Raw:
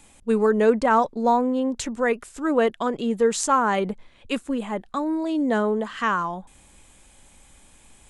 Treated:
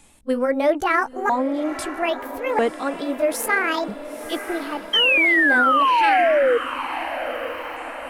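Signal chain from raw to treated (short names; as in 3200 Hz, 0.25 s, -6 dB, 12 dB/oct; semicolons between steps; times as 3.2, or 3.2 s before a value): repeated pitch sweeps +9.5 st, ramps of 1.294 s; painted sound fall, 4.93–6.58, 460–3200 Hz -17 dBFS; diffused feedback echo 0.949 s, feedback 53%, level -11.5 dB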